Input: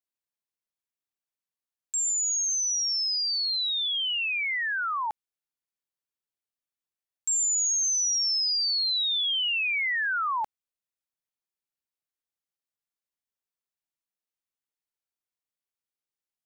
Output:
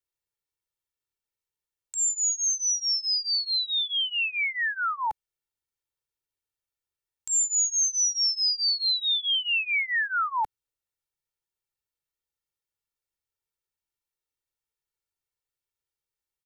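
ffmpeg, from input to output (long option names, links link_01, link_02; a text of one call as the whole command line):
ffmpeg -i in.wav -filter_complex "[0:a]aecho=1:1:2.2:0.89,acrossover=split=230|1300|4100[link_01][link_02][link_03][link_04];[link_01]acontrast=88[link_05];[link_05][link_02][link_03][link_04]amix=inputs=4:normalize=0,volume=-2dB" out.wav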